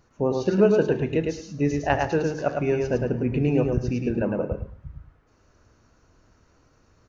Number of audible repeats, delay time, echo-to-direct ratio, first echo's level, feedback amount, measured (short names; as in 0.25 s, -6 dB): 2, 0.107 s, -4.0 dB, -4.0 dB, 16%